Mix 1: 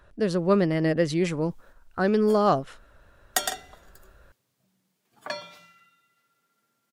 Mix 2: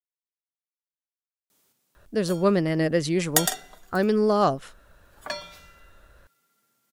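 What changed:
speech: entry +1.95 s; master: add treble shelf 6 kHz +8.5 dB

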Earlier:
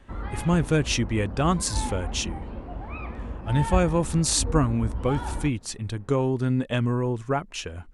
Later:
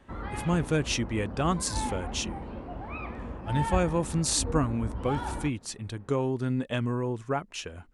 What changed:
speech -3.5 dB; master: add bass shelf 63 Hz -10.5 dB

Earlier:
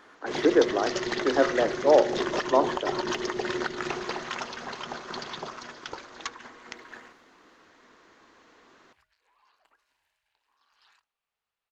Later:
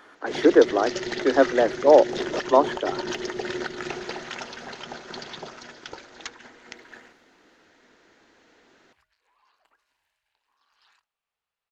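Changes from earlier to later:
speech +6.5 dB; first sound: add peaking EQ 1.1 kHz -12.5 dB 0.25 oct; reverb: off

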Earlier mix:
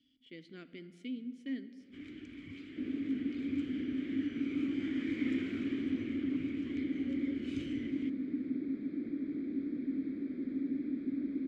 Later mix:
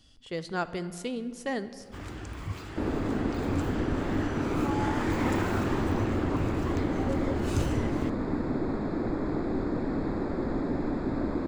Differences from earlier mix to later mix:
first sound -4.5 dB; master: remove vowel filter i

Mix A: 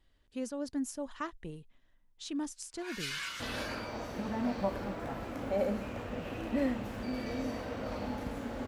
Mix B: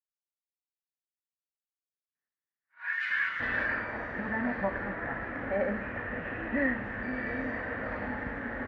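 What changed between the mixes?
speech: muted; master: add resonant low-pass 1.8 kHz, resonance Q 8.7

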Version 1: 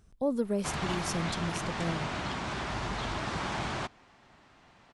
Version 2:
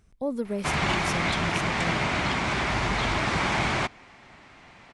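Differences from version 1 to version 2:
background +7.5 dB; master: add peaking EQ 2.2 kHz +7 dB 0.42 oct

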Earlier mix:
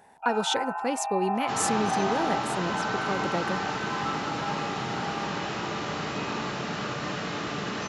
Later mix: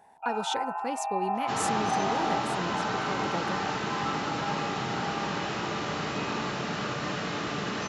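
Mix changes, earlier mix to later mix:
speech -5.5 dB; first sound: add peaking EQ 1.6 kHz -6.5 dB 0.39 oct

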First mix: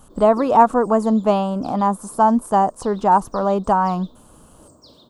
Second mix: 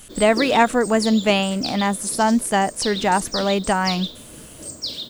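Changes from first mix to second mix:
background +9.5 dB; master: add resonant high shelf 1.5 kHz +11 dB, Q 3

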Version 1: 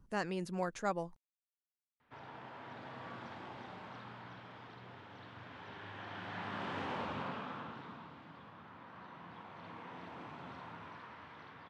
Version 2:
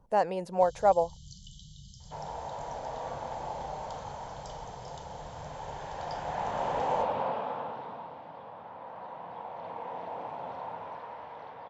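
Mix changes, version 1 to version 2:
first sound: unmuted; master: add high-order bell 660 Hz +15 dB 1.3 oct

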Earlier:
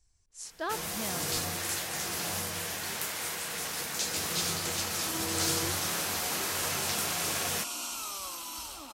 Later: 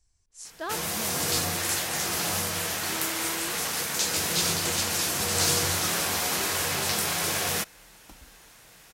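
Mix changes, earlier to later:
first sound +5.5 dB; second sound: entry -2.20 s

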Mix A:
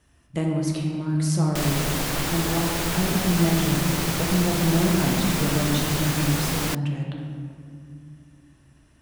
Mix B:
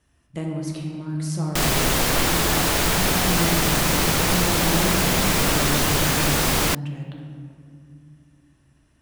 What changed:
speech -4.0 dB; background +6.5 dB

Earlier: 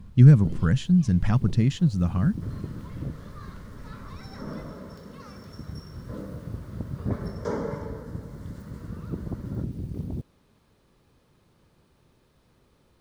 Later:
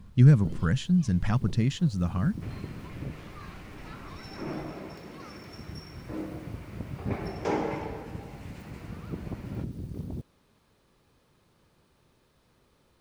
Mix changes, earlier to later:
second sound: remove static phaser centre 510 Hz, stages 8; master: add bass shelf 440 Hz -4.5 dB

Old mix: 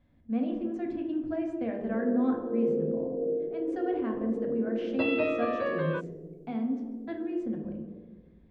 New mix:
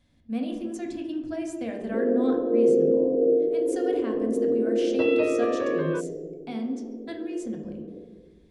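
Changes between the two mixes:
speech: remove low-pass 1.8 kHz 12 dB/octave; first sound: send +10.5 dB

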